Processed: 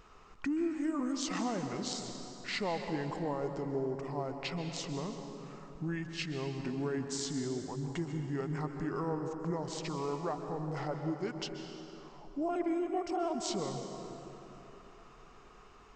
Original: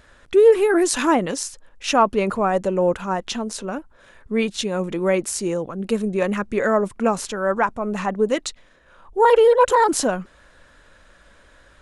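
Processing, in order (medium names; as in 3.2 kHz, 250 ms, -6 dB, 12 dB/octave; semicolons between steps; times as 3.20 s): compression 3:1, threshold -31 dBFS, peak gain reduction 16.5 dB; plate-style reverb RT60 2.7 s, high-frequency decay 0.55×, pre-delay 85 ms, DRR 5 dB; speed mistake 45 rpm record played at 33 rpm; trim -6 dB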